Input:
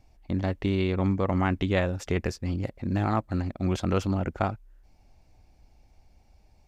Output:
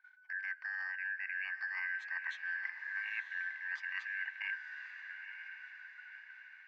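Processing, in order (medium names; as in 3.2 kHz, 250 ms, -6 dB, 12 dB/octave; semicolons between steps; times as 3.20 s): four frequency bands reordered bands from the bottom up 2143; elliptic high-pass 890 Hz, stop band 80 dB; gate -57 dBFS, range -13 dB; reverse; compression 6:1, threshold -37 dBFS, peak gain reduction 15.5 dB; reverse; distance through air 220 m; echo that smears into a reverb 968 ms, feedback 50%, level -8 dB; reverberation RT60 3.0 s, pre-delay 5 ms, DRR 19.5 dB; trim +1 dB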